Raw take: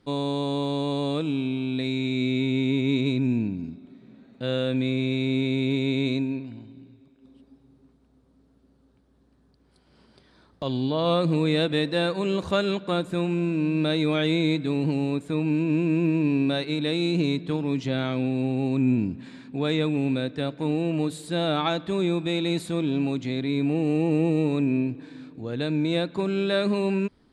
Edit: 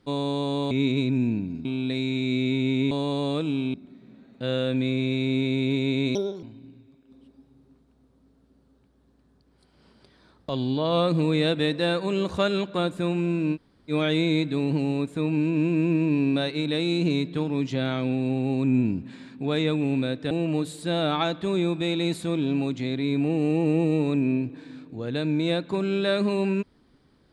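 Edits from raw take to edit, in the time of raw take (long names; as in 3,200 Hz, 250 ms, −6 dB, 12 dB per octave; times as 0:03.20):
0:00.71–0:01.54: swap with 0:02.80–0:03.74
0:06.15–0:06.56: play speed 148%
0:13.68–0:14.04: fill with room tone, crossfade 0.06 s
0:20.44–0:20.76: remove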